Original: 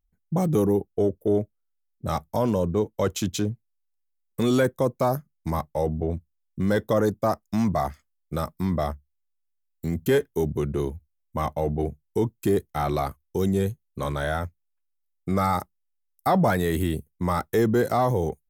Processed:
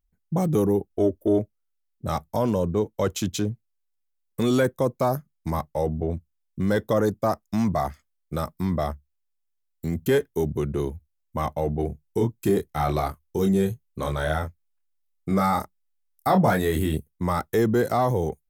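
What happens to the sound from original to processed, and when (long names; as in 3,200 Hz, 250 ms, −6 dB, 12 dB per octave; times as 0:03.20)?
0:00.90–0:01.39: comb filter 3.2 ms, depth 72%
0:11.87–0:16.98: double-tracking delay 26 ms −5.5 dB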